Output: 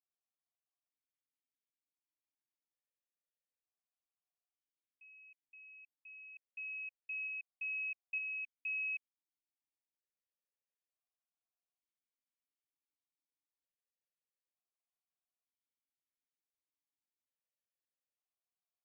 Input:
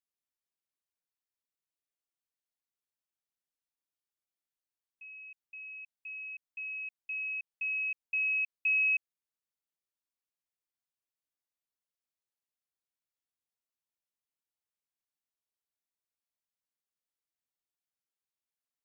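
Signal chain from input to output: stepped vowel filter 1.1 Hz; trim +3.5 dB

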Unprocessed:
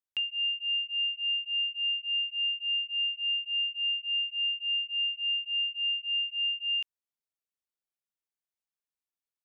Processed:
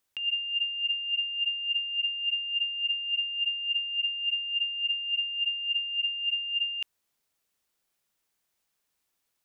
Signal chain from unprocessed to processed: compressor with a negative ratio -39 dBFS, ratio -1; trim +8 dB

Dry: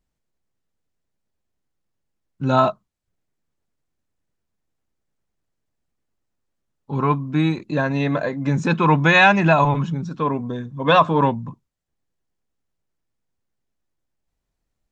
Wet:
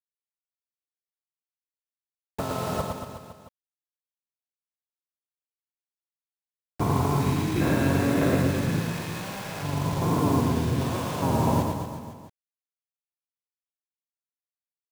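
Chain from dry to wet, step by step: spectrogram pixelated in time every 400 ms; harmony voices -7 st -4 dB, -3 st -7 dB, +5 st -16 dB; compressor with a negative ratio -24 dBFS, ratio -0.5; bit crusher 6-bit; on a send: reverse bouncing-ball echo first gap 110 ms, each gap 1.1×, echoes 5; on the sum: trim -2.5 dB

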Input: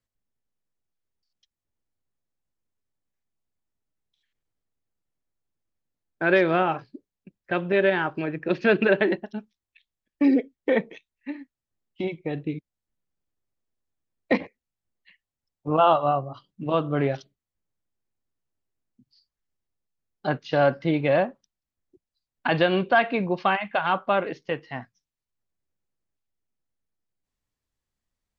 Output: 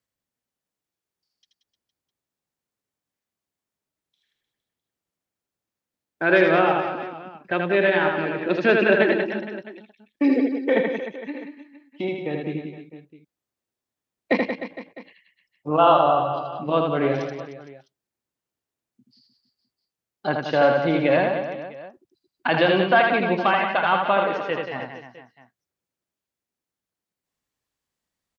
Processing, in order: high-pass 200 Hz 6 dB/octave; reverse bouncing-ball echo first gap 80 ms, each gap 1.25×, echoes 5; trim +2 dB

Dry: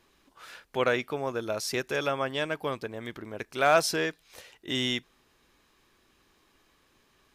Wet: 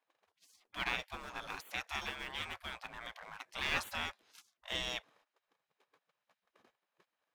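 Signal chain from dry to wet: tilt EQ -4 dB/octave; waveshaping leveller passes 1; gate -51 dBFS, range -15 dB; spectral gate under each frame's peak -25 dB weak; trim +1 dB

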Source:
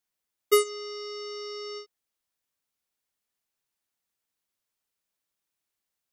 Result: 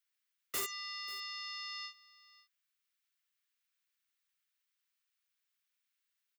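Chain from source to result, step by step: Bessel high-pass 2.2 kHz, order 6; peaking EQ 11 kHz -13.5 dB 2.7 oct; integer overflow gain 38.5 dB; delay 518 ms -20 dB; speed mistake 25 fps video run at 24 fps; trim +9 dB

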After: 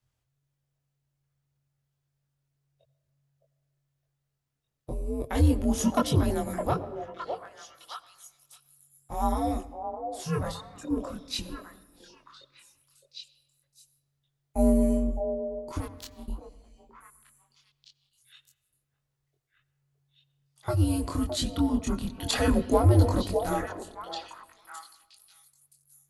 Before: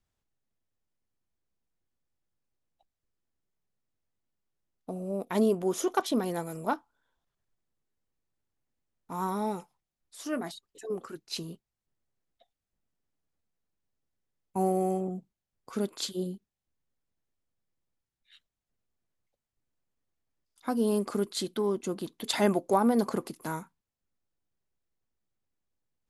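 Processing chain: 15.78–16.28 s: power-law waveshaper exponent 3; frequency shift -140 Hz; chorus voices 2, 0.32 Hz, delay 23 ms, depth 2 ms; repeats whose band climbs or falls 612 ms, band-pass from 560 Hz, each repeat 1.4 oct, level -3 dB; on a send at -16.5 dB: reverberation RT60 1.2 s, pre-delay 76 ms; on the sum: trim +6 dB

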